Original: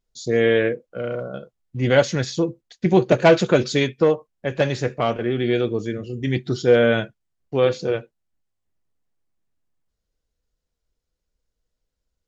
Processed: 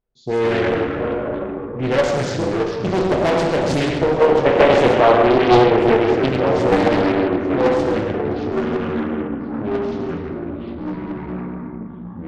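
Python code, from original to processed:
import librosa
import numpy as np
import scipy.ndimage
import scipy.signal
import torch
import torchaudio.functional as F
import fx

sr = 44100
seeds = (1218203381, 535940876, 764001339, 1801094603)

p1 = fx.peak_eq(x, sr, hz=700.0, db=3.5, octaves=0.93)
p2 = p1 + fx.echo_feedback(p1, sr, ms=130, feedback_pct=38, wet_db=-11.0, dry=0)
p3 = fx.rev_plate(p2, sr, seeds[0], rt60_s=1.4, hf_ratio=0.8, predelay_ms=0, drr_db=0.5)
p4 = fx.env_lowpass(p3, sr, base_hz=1900.0, full_db=-9.5)
p5 = fx.tube_stage(p4, sr, drive_db=12.0, bias=0.45)
p6 = fx.level_steps(p5, sr, step_db=14)
p7 = p5 + F.gain(torch.from_numpy(p6), -3.0).numpy()
p8 = fx.spec_box(p7, sr, start_s=4.21, length_s=2.08, low_hz=270.0, high_hz=3000.0, gain_db=9)
p9 = fx.echo_pitch(p8, sr, ms=100, semitones=-4, count=3, db_per_echo=-6.0)
p10 = fx.doppler_dist(p9, sr, depth_ms=0.71)
y = F.gain(torch.from_numpy(p10), -3.0).numpy()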